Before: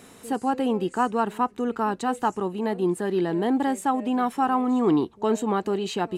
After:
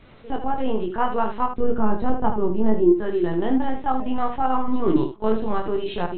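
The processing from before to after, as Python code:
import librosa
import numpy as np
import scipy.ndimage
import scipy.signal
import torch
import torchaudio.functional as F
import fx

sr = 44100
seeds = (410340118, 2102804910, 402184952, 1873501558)

y = fx.lpc_vocoder(x, sr, seeds[0], excitation='pitch_kept', order=10)
y = fx.tilt_shelf(y, sr, db=8.0, hz=790.0, at=(1.49, 2.92))
y = fx.room_early_taps(y, sr, ms=(23, 77), db=(-4.5, -8.0))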